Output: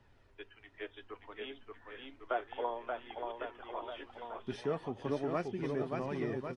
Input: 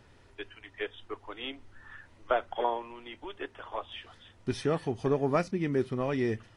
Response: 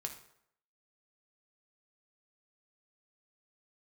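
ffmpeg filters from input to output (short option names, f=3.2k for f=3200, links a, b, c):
-filter_complex "[0:a]lowpass=f=3.5k:p=1,acrossover=split=100|840[a][b][c];[a]acompressor=threshold=-55dB:ratio=6[d];[d][b][c]amix=inputs=3:normalize=0,aecho=1:1:580|1102|1572|1995|2375:0.631|0.398|0.251|0.158|0.1,flanger=delay=1:depth=3.9:regen=67:speed=0.33:shape=triangular,volume=-3dB"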